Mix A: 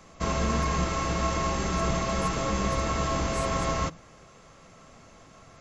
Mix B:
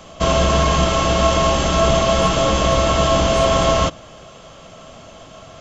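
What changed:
background +10.0 dB; master: add graphic EQ with 31 bands 630 Hz +8 dB, 2 kHz -5 dB, 3.15 kHz +11 dB

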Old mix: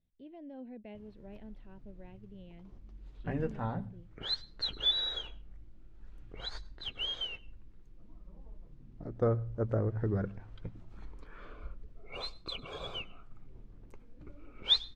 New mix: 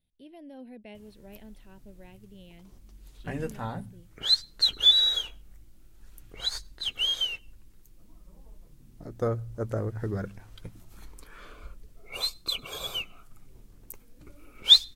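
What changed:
background: send -8.0 dB; master: remove tape spacing loss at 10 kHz 31 dB

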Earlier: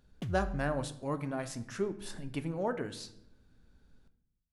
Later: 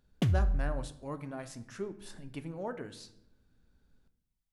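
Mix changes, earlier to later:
speech -5.0 dB; background +10.5 dB

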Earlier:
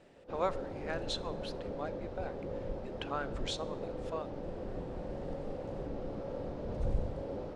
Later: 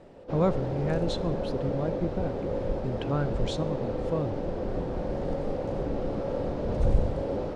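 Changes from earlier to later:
speech: remove high-pass 750 Hz; background +9.5 dB

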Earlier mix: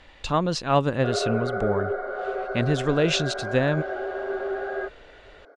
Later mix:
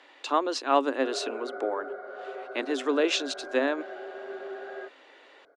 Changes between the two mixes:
speech: add rippled Chebyshev high-pass 260 Hz, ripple 3 dB; background -9.5 dB

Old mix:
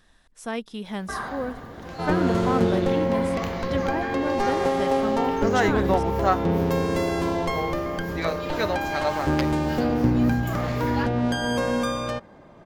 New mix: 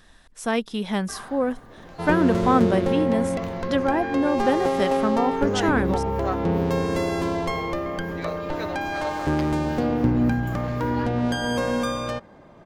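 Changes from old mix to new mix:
speech +6.5 dB; first sound -8.0 dB

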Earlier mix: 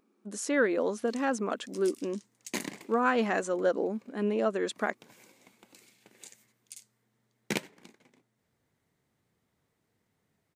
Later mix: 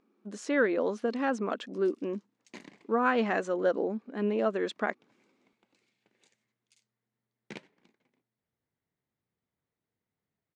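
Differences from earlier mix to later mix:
background -12.0 dB; master: add low-pass 4.4 kHz 12 dB/octave

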